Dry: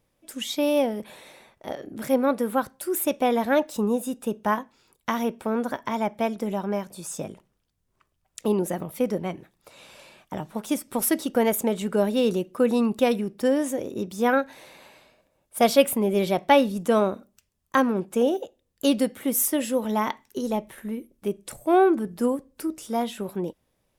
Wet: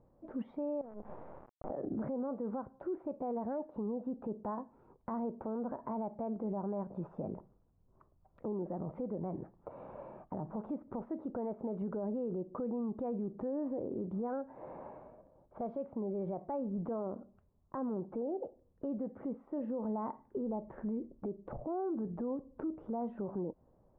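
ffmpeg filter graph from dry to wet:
-filter_complex "[0:a]asettb=1/sr,asplit=3[s0][s1][s2];[s0]atrim=end=0.814[s3];[s1]atrim=start=0.81:end=1.7,asetpts=PTS-STARTPTS,afade=t=in:d=0.004:c=qsin,afade=t=out:st=0.886:d=0.004:c=qsin,acrusher=bits=5:dc=4:mix=0:aa=0.000001,acompressor=threshold=0.01:ratio=5:attack=3.2:release=140:knee=1:detection=peak[s4];[s2]atrim=start=1.696[s5];[s3][s4]acrossfade=d=0.004:c1=hsin:c2=qsin[s6];[s6][s5]acrossfade=d=0.004:c1=qsin:c2=hsin,acompressor=threshold=0.02:ratio=8,lowpass=f=1000:w=0.5412,lowpass=f=1000:w=1.3066,alimiter=level_in=4.22:limit=0.0631:level=0:latency=1:release=34,volume=0.237,volume=2"

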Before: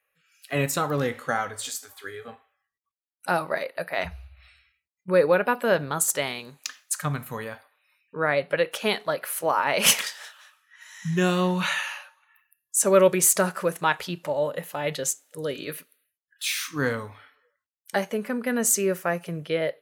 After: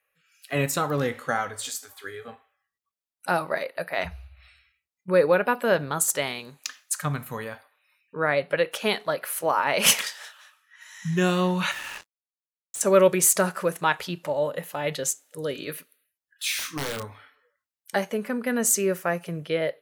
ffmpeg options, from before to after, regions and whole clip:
-filter_complex "[0:a]asettb=1/sr,asplit=3[s0][s1][s2];[s0]atrim=end=11.714[s3];[s1]atrim=start=11.71:end=12.81,asetpts=PTS-STARTPTS,afade=t=in:d=0.004:c=qsin,afade=t=out:st=1.096:d=0.004:c=qsin,highshelf=f=12000:g=-10.5,acompressor=threshold=0.0251:ratio=5:attack=3.2:release=140:knee=1:detection=peak,acrusher=bits=5:mix=0:aa=0.5[s4];[s2]atrim=start=12.806[s5];[s3][s4]acrossfade=d=0.004:c1=hsin:c2=qsin[s6];[s6][s5]acrossfade=d=0.004:c1=qsin:c2=hsin,asettb=1/sr,asplit=3[s7][s8][s9];[s7]atrim=end=16.594[s10];[s8]atrim=start=16.59:end=17.05,asetpts=PTS-STARTPTS,afade=t=in:d=0.004:c=qsin,afade=t=out:st=0.456:d=0.004:c=qsin,acompressor=threshold=0.0501:ratio=3:attack=3.2:release=140:knee=1:detection=peak,aeval=exprs='(mod(14.1*val(0)+1,2)-1)/14.1':c=same,asplit=2[s11][s12];[s12]adelay=29,volume=0.422[s13];[s11][s13]amix=inputs=2:normalize=0,atrim=end_sample=20286[s14];[s9]atrim=start=17.046[s15];[s10][s14]acrossfade=d=0.004:c1=hsin:c2=qsin[s16];[s16][s15]acrossfade=d=0.004:c1=qsin:c2=hsin"

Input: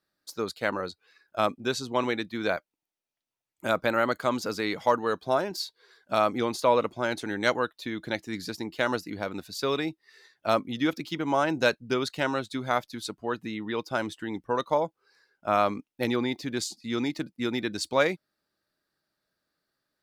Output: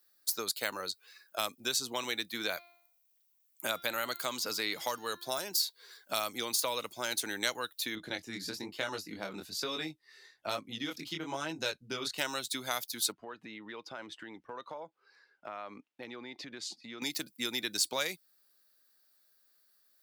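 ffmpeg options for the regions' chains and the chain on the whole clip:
-filter_complex "[0:a]asettb=1/sr,asplit=3[s0][s1][s2];[s0]atrim=end=2.284[s3];[s1]atrim=start=2.28:end=5.32,asetpts=PTS-STARTPTS,afade=t=in:d=0.004:c=qsin,afade=t=out:st=3.036:d=0.004:c=qsin,bandreject=f=346.8:t=h:w=4,bandreject=f=693.6:t=h:w=4,bandreject=f=1040.4:t=h:w=4,bandreject=f=1387.2:t=h:w=4,bandreject=f=1734:t=h:w=4,bandreject=f=2080.8:t=h:w=4,bandreject=f=2427.6:t=h:w=4,bandreject=f=2774.4:t=h:w=4,bandreject=f=3121.2:t=h:w=4,bandreject=f=3468:t=h:w=4,bandreject=f=3814.8:t=h:w=4,bandreject=f=4161.6:t=h:w=4,bandreject=f=4508.4:t=h:w=4,bandreject=f=4855.2:t=h:w=4,bandreject=f=5202:t=h:w=4,bandreject=f=5548.8:t=h:w=4,acrossover=split=4900[s4][s5];[s5]acompressor=threshold=0.00316:ratio=4:attack=1:release=60[s6];[s4][s6]amix=inputs=2:normalize=0[s7];[s2]atrim=start=5.316[s8];[s3][s7]acrossfade=d=0.004:c1=hsin:c2=qsin[s9];[s9][s8]acrossfade=d=0.004:c1=qsin:c2=hsin,asettb=1/sr,asplit=3[s10][s11][s12];[s10]atrim=end=7.954[s13];[s11]atrim=start=7.95:end=12.18,asetpts=PTS-STARTPTS,afade=t=in:d=0.004:c=qsin,afade=t=out:st=4.226:d=0.004:c=qsin,aemphasis=mode=reproduction:type=bsi,flanger=delay=18:depth=7.8:speed=1.1[s14];[s12]atrim=start=12.176[s15];[s13][s14]acrossfade=d=0.004:c1=hsin:c2=qsin[s16];[s16][s15]acrossfade=d=0.004:c1=qsin:c2=hsin,asettb=1/sr,asplit=3[s17][s18][s19];[s17]atrim=end=13.124[s20];[s18]atrim=start=13.12:end=17.02,asetpts=PTS-STARTPTS,afade=t=in:d=0.004:c=qsin,afade=t=out:st=3.896:d=0.004:c=qsin,lowpass=2700,acompressor=threshold=0.0112:ratio=5:attack=3.2:release=140:knee=1:detection=peak[s21];[s19]atrim=start=17.016[s22];[s20][s21]acrossfade=d=0.004:c1=hsin:c2=qsin[s23];[s23][s22]acrossfade=d=0.004:c1=qsin:c2=hsin,acrossover=split=140|2900[s24][s25][s26];[s24]acompressor=threshold=0.00501:ratio=4[s27];[s25]acompressor=threshold=0.02:ratio=4[s28];[s26]acompressor=threshold=0.0112:ratio=4[s29];[s27][s28][s29]amix=inputs=3:normalize=0,aemphasis=mode=production:type=riaa"

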